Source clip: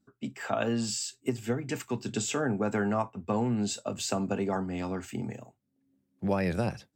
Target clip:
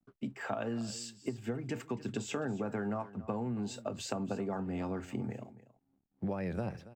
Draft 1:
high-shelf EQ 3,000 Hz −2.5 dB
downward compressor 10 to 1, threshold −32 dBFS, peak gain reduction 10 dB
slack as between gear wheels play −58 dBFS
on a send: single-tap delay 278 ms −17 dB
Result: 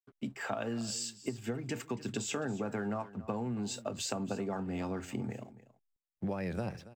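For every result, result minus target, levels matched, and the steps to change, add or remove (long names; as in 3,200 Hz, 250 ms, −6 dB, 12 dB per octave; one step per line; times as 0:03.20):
8,000 Hz band +5.5 dB; slack as between gear wheels: distortion +8 dB
change: high-shelf EQ 3,000 Hz −11 dB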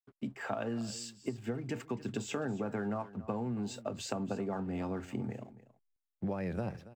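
slack as between gear wheels: distortion +8 dB
change: slack as between gear wheels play −66.5 dBFS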